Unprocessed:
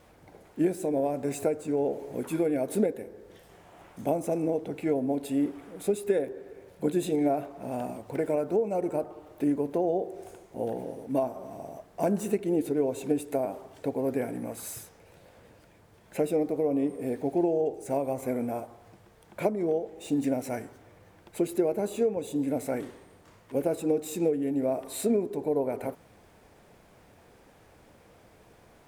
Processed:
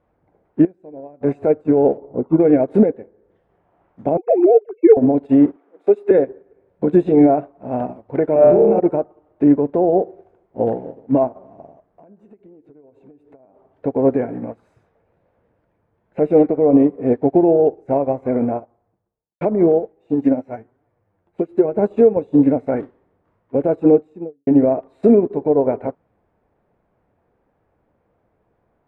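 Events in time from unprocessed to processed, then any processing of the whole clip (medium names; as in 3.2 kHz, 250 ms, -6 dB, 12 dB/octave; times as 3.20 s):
0.65–1.21 s: gain -11.5 dB
1.97–2.40 s: Savitzky-Golay filter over 65 samples
4.17–4.97 s: formants replaced by sine waves
5.56–6.11 s: high-pass 300 Hz 24 dB/octave
8.33–8.80 s: flutter echo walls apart 4.9 m, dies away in 1.1 s
11.77–13.72 s: compression 20:1, threshold -39 dBFS
14.50–16.63 s: repeats whose band climbs or falls 113 ms, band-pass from 2.6 kHz, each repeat -0.7 oct, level -7.5 dB
18.35–19.41 s: studio fade out
19.92–21.74 s: flange 1.1 Hz, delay 6.6 ms, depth 5 ms, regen +41%
23.87–24.47 s: studio fade out
whole clip: low-pass 1.4 kHz 12 dB/octave; loudness maximiser +21.5 dB; upward expansion 2.5:1, over -24 dBFS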